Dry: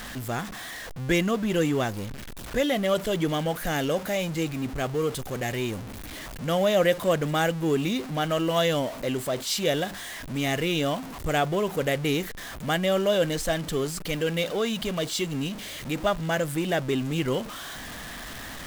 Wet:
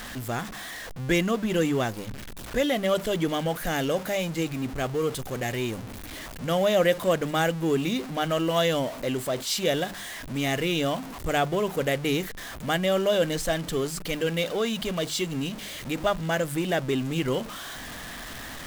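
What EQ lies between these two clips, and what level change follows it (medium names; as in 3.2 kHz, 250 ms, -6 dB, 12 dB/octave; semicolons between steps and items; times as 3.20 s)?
hum notches 50/100/150/200 Hz; 0.0 dB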